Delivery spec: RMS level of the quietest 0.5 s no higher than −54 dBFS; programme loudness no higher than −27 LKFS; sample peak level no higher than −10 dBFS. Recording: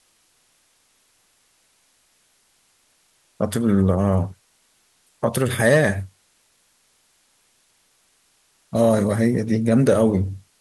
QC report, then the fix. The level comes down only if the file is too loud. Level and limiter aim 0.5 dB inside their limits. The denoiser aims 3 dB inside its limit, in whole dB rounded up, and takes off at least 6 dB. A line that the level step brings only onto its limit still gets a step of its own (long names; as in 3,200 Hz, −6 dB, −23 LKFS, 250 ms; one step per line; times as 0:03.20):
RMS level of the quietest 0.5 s −63 dBFS: in spec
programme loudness −20.0 LKFS: out of spec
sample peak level −5.0 dBFS: out of spec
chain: level −7.5 dB